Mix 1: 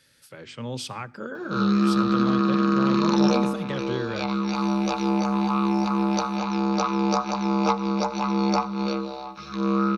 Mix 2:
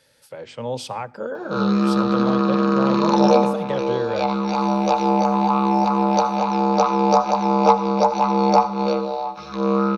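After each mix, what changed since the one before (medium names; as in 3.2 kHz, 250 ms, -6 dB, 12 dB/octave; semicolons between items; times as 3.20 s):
background: send +8.5 dB; master: add high-order bell 660 Hz +10 dB 1.3 oct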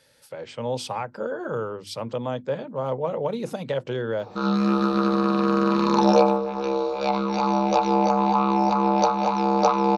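background: entry +2.85 s; reverb: off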